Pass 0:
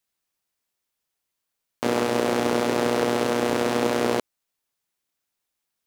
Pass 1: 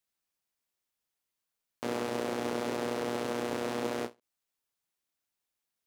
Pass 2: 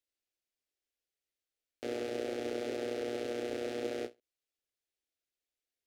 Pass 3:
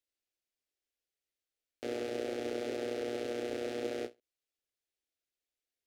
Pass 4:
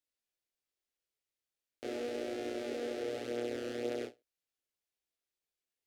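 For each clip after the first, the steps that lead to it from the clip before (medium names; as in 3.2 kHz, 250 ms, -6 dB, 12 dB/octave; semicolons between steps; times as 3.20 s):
peak limiter -15.5 dBFS, peak gain reduction 7.5 dB; endings held to a fixed fall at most 340 dB/s; trim -5.5 dB
treble shelf 7.2 kHz -12 dB; static phaser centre 420 Hz, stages 4; trim -1 dB
no audible change
chorus 0.41 Hz, delay 19.5 ms, depth 6.2 ms; trim +1.5 dB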